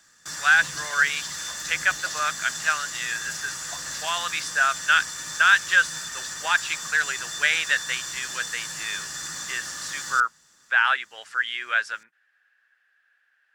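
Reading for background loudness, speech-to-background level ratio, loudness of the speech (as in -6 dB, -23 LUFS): -31.5 LUFS, 7.5 dB, -24.0 LUFS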